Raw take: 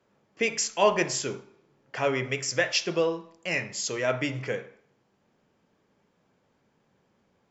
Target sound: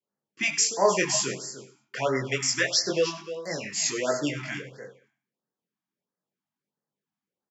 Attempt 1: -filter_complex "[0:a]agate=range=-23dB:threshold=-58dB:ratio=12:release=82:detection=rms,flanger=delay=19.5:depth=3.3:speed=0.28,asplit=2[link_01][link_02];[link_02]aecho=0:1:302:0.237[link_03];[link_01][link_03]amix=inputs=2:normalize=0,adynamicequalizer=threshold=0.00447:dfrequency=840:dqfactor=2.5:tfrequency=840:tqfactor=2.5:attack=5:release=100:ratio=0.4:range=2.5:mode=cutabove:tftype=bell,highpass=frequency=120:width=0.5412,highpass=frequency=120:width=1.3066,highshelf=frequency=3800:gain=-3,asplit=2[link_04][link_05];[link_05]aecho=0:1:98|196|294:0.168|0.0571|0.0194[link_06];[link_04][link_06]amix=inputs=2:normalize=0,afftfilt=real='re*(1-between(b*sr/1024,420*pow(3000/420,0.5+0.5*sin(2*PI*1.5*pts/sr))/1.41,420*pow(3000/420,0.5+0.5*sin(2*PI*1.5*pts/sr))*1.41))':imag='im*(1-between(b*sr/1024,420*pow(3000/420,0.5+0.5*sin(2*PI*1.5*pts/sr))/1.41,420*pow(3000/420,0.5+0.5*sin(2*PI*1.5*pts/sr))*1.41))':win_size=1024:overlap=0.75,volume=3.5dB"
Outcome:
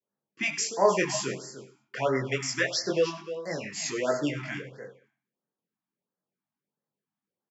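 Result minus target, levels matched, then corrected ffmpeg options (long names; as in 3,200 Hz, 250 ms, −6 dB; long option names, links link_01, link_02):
8,000 Hz band −4.5 dB
-filter_complex "[0:a]agate=range=-23dB:threshold=-58dB:ratio=12:release=82:detection=rms,flanger=delay=19.5:depth=3.3:speed=0.28,asplit=2[link_01][link_02];[link_02]aecho=0:1:302:0.237[link_03];[link_01][link_03]amix=inputs=2:normalize=0,adynamicequalizer=threshold=0.00447:dfrequency=840:dqfactor=2.5:tfrequency=840:tqfactor=2.5:attack=5:release=100:ratio=0.4:range=2.5:mode=cutabove:tftype=bell,highpass=frequency=120:width=0.5412,highpass=frequency=120:width=1.3066,highshelf=frequency=3800:gain=6.5,asplit=2[link_04][link_05];[link_05]aecho=0:1:98|196|294:0.168|0.0571|0.0194[link_06];[link_04][link_06]amix=inputs=2:normalize=0,afftfilt=real='re*(1-between(b*sr/1024,420*pow(3000/420,0.5+0.5*sin(2*PI*1.5*pts/sr))/1.41,420*pow(3000/420,0.5+0.5*sin(2*PI*1.5*pts/sr))*1.41))':imag='im*(1-between(b*sr/1024,420*pow(3000/420,0.5+0.5*sin(2*PI*1.5*pts/sr))/1.41,420*pow(3000/420,0.5+0.5*sin(2*PI*1.5*pts/sr))*1.41))':win_size=1024:overlap=0.75,volume=3.5dB"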